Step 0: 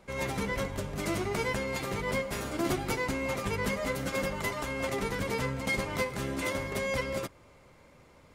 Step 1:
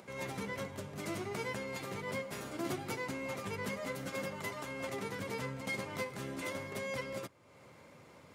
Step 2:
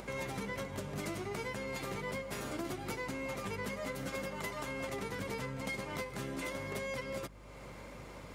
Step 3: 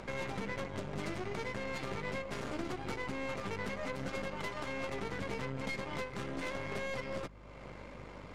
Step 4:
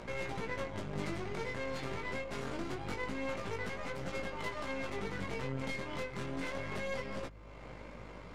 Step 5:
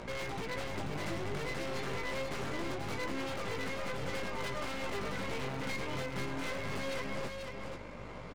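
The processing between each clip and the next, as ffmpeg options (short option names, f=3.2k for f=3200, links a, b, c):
-af "acompressor=mode=upward:threshold=-39dB:ratio=2.5,highpass=f=94:w=0.5412,highpass=f=94:w=1.3066,volume=-7.5dB"
-af "acompressor=threshold=-44dB:ratio=6,aeval=exprs='val(0)+0.000891*(sin(2*PI*50*n/s)+sin(2*PI*2*50*n/s)/2+sin(2*PI*3*50*n/s)/3+sin(2*PI*4*50*n/s)/4+sin(2*PI*5*50*n/s)/5)':c=same,volume=7.5dB"
-af "aeval=exprs='0.0596*(cos(1*acos(clip(val(0)/0.0596,-1,1)))-cos(1*PI/2))+0.00668*(cos(8*acos(clip(val(0)/0.0596,-1,1)))-cos(8*PI/2))':c=same,adynamicsmooth=sensitivity=7:basefreq=4.9k"
-af "flanger=delay=17:depth=6:speed=0.25,volume=2.5dB"
-filter_complex "[0:a]aeval=exprs='0.0211*(abs(mod(val(0)/0.0211+3,4)-2)-1)':c=same,asplit=2[a][b];[b]aecho=0:1:487:0.562[c];[a][c]amix=inputs=2:normalize=0,volume=2.5dB"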